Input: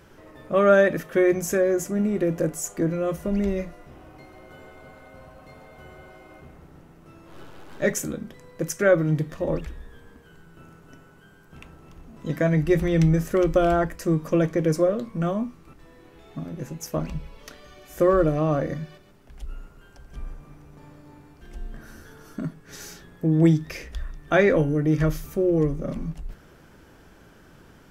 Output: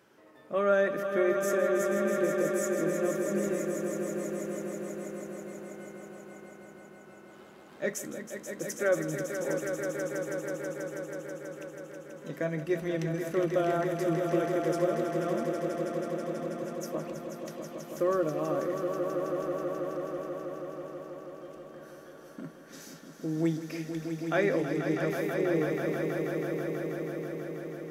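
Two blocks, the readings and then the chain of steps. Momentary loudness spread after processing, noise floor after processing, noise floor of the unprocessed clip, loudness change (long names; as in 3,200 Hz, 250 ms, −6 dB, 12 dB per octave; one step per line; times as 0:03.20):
17 LU, −51 dBFS, −52 dBFS, −8.0 dB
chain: high-pass filter 220 Hz 12 dB per octave
echo that builds up and dies away 162 ms, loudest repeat 5, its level −8.5 dB
level −8.5 dB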